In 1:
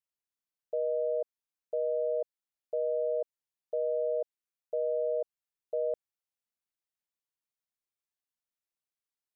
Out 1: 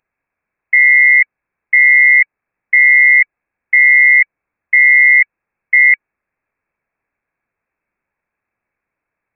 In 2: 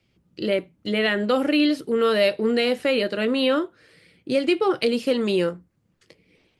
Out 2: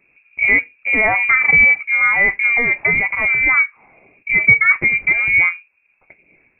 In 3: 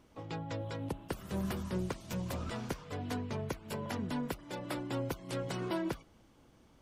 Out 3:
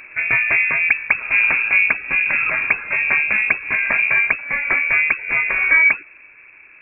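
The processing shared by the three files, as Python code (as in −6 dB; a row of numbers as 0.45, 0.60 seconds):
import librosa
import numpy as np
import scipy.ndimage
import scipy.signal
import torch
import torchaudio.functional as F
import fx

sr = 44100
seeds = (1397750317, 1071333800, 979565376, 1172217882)

y = fx.rider(x, sr, range_db=10, speed_s=2.0)
y = fx.small_body(y, sr, hz=(330.0, 930.0), ring_ms=45, db=7)
y = fx.freq_invert(y, sr, carrier_hz=2600)
y = librosa.util.normalize(y) * 10.0 ** (-1.5 / 20.0)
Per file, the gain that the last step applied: +24.0, +5.5, +18.5 decibels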